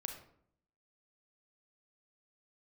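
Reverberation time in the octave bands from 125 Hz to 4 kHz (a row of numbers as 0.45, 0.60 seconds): 0.85, 0.85, 0.70, 0.60, 0.50, 0.40 seconds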